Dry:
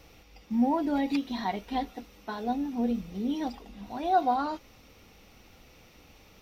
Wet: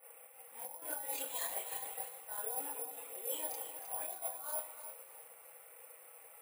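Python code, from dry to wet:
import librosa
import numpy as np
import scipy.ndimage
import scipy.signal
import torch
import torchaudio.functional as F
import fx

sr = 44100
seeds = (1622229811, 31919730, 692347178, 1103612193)

p1 = fx.wiener(x, sr, points=9)
p2 = fx.env_lowpass(p1, sr, base_hz=1900.0, full_db=-23.0)
p3 = scipy.signal.sosfilt(scipy.signal.ellip(4, 1.0, 70, 480.0, 'highpass', fs=sr, output='sos'), p2)
p4 = fx.high_shelf(p3, sr, hz=3500.0, db=9.5)
p5 = p4 + 0.88 * np.pad(p4, (int(6.1 * sr / 1000.0), 0))[:len(p4)]
p6 = fx.over_compress(p5, sr, threshold_db=-39.0, ratio=-1.0)
p7 = fx.chorus_voices(p6, sr, voices=2, hz=0.95, base_ms=29, depth_ms=3.1, mix_pct=65)
p8 = p7 + fx.echo_single(p7, sr, ms=319, db=-21.5, dry=0)
p9 = fx.rev_fdn(p8, sr, rt60_s=1.0, lf_ratio=1.45, hf_ratio=0.75, size_ms=77.0, drr_db=6.0)
p10 = (np.kron(scipy.signal.resample_poly(p9, 1, 4), np.eye(4)[0]) * 4)[:len(p9)]
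p11 = fx.echo_crushed(p10, sr, ms=310, feedback_pct=35, bits=8, wet_db=-10)
y = p11 * librosa.db_to_amplitude(-7.0)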